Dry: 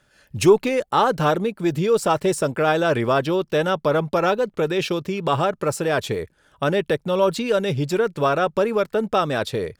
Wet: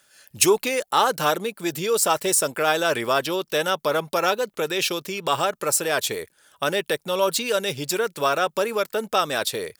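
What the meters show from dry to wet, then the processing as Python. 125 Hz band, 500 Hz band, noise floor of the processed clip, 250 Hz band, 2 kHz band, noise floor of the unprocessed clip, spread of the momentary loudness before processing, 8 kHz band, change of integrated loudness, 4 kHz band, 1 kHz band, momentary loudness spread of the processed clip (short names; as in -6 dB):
-11.0 dB, -4.0 dB, -67 dBFS, -7.0 dB, +1.0 dB, -63 dBFS, 5 LU, +10.5 dB, -1.5 dB, +5.0 dB, -1.0 dB, 6 LU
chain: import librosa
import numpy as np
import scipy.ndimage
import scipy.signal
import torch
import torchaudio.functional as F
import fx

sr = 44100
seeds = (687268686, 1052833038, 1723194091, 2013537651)

y = fx.riaa(x, sr, side='recording')
y = F.gain(torch.from_numpy(y), -1.0).numpy()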